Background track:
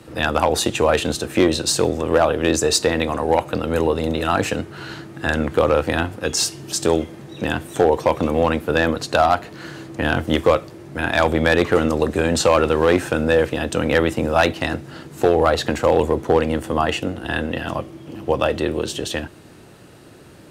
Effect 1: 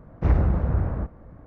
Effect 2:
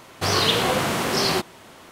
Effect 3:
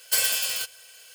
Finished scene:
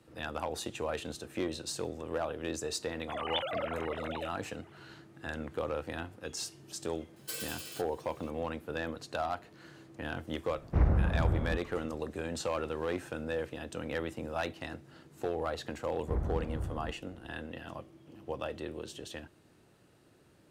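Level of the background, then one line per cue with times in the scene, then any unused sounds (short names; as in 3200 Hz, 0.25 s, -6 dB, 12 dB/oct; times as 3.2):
background track -18.5 dB
2.87 add 2 -16.5 dB + sine-wave speech
7.16 add 3 -17.5 dB + small resonant body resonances 460/1200/3900 Hz, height 13 dB
10.51 add 1 -6 dB
15.86 add 1 -14 dB + LPF 1700 Hz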